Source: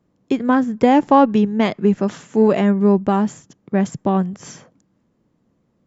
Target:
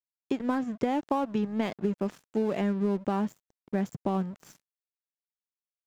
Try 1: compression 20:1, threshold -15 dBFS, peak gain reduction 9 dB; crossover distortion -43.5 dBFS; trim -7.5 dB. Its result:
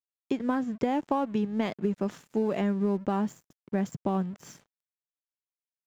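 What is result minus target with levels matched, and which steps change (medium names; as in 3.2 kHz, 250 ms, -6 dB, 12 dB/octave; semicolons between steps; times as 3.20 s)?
crossover distortion: distortion -6 dB
change: crossover distortion -36.5 dBFS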